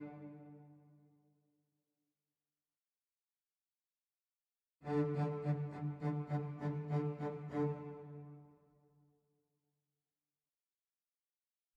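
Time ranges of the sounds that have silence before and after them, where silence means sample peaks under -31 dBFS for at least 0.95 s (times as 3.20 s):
4.92–7.69 s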